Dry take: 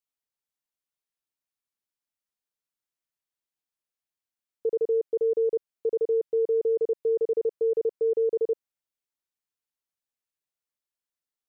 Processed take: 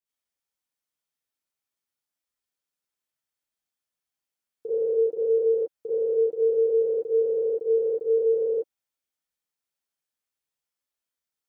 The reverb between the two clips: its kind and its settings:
reverb whose tail is shaped and stops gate 110 ms rising, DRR −8 dB
level −6 dB

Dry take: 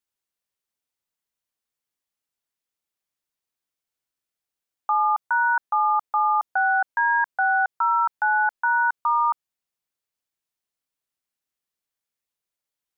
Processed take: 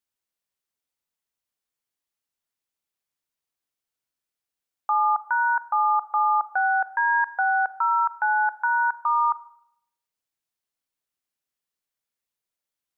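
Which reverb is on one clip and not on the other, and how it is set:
four-comb reverb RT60 0.72 s, combs from 26 ms, DRR 15.5 dB
level −1 dB

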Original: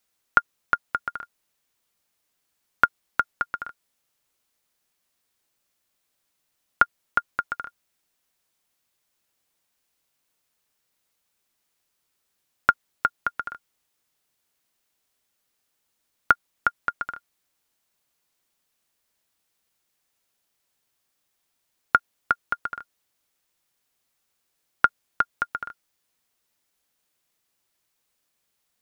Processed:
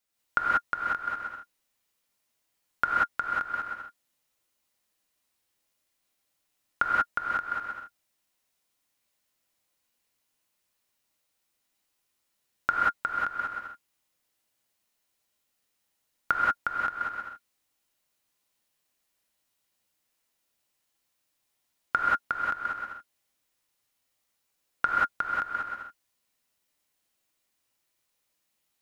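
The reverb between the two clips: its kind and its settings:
reverb whose tail is shaped and stops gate 210 ms rising, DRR −5.5 dB
level −8.5 dB

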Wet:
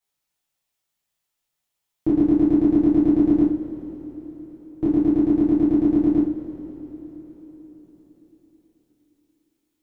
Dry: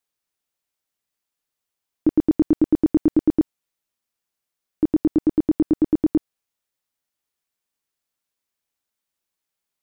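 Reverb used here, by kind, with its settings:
coupled-rooms reverb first 0.43 s, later 4.6 s, from −19 dB, DRR −8.5 dB
level −6 dB

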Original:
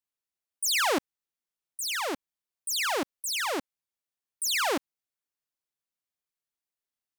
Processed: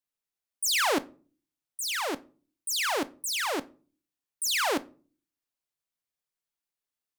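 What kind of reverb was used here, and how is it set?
rectangular room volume 240 cubic metres, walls furnished, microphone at 0.33 metres

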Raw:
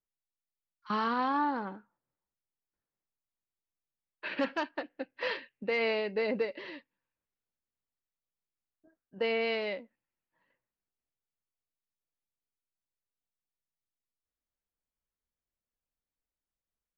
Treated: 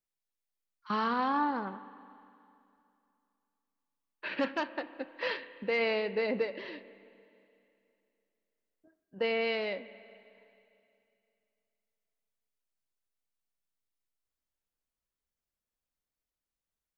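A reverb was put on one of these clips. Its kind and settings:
spring reverb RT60 2.7 s, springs 30/41/50 ms, chirp 45 ms, DRR 14 dB

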